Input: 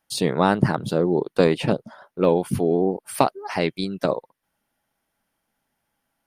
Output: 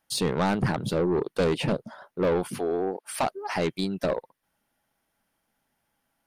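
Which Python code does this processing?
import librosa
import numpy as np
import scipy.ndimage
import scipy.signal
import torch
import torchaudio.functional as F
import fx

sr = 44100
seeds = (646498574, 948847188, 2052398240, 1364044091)

y = fx.weighting(x, sr, curve='A', at=(2.47, 3.22), fade=0.02)
y = 10.0 ** (-18.5 / 20.0) * np.tanh(y / 10.0 ** (-18.5 / 20.0))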